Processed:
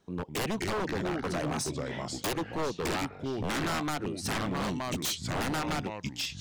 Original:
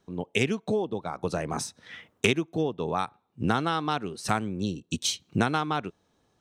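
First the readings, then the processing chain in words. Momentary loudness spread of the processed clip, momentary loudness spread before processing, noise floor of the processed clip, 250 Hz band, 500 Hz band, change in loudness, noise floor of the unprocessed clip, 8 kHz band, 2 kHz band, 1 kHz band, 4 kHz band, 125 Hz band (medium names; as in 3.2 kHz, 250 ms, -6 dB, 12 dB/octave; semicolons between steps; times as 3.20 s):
4 LU, 7 LU, -47 dBFS, -3.0 dB, -4.0 dB, -3.5 dB, -71 dBFS, -0.5 dB, -3.0 dB, -4.0 dB, -2.0 dB, -3.0 dB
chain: ever faster or slower copies 188 ms, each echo -3 st, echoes 3, each echo -6 dB; wavefolder -25.5 dBFS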